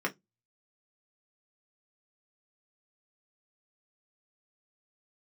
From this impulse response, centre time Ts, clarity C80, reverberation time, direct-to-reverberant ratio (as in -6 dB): 9 ms, 36.0 dB, 0.15 s, -0.5 dB